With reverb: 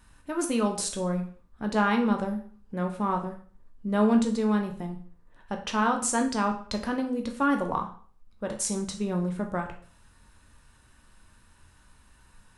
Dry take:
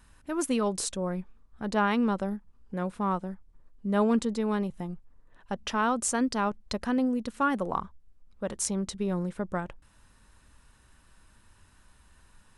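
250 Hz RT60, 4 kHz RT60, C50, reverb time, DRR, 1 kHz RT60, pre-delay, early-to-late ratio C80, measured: 0.45 s, 0.45 s, 9.5 dB, 0.45 s, 3.0 dB, 0.45 s, 7 ms, 14.0 dB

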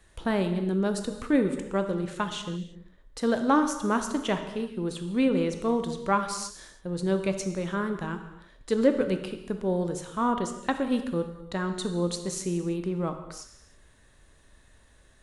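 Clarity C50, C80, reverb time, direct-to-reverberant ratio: 8.5 dB, 10.0 dB, not exponential, 7.0 dB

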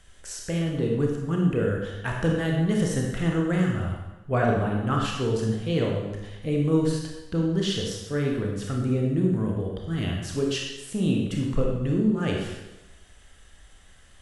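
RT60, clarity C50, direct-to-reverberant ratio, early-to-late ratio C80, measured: 1.1 s, 2.0 dB, -1.0 dB, 4.5 dB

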